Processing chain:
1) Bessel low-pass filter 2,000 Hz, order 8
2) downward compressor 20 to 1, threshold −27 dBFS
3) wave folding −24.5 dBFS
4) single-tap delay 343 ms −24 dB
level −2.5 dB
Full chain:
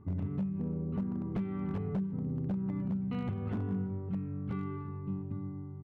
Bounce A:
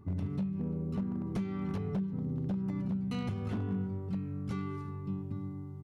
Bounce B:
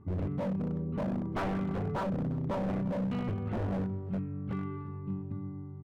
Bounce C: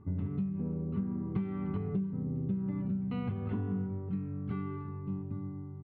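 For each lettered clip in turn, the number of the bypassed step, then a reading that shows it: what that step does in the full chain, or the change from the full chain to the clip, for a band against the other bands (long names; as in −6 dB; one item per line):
1, 2 kHz band +2.5 dB
2, average gain reduction 3.0 dB
3, distortion level −18 dB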